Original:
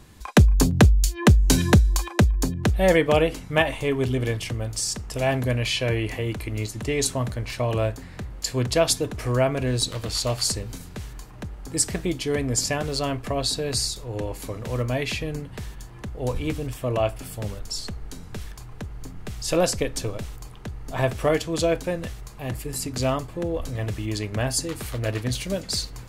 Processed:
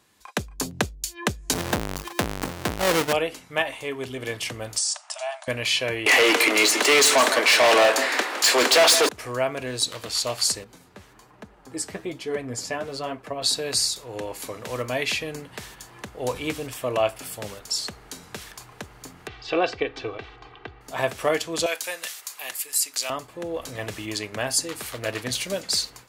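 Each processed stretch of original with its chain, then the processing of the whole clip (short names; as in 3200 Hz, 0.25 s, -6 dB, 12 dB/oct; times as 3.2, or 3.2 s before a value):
1.53–3.13 half-waves squared off + low shelf 200 Hz +8 dB + tube stage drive 11 dB, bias 0.55
4.78–5.48 compressor 5:1, threshold -25 dBFS + brick-wall FIR band-pass 570–10000 Hz + dynamic EQ 2000 Hz, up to -7 dB, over -51 dBFS, Q 1.6
6.06–9.09 steep high-pass 250 Hz 48 dB/oct + overdrive pedal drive 33 dB, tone 5000 Hz, clips at -7 dBFS + echo 0.161 s -11 dB
10.64–13.42 high shelf 2300 Hz -11 dB + flange 1.2 Hz, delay 3.9 ms, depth 7.7 ms, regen +37%
19.27–20.81 LPF 3500 Hz 24 dB/oct + comb 2.6 ms, depth 64%
21.66–23.1 HPF 900 Hz 6 dB/oct + tilt +3 dB/oct
whole clip: HPF 650 Hz 6 dB/oct; AGC gain up to 12 dB; gain -6.5 dB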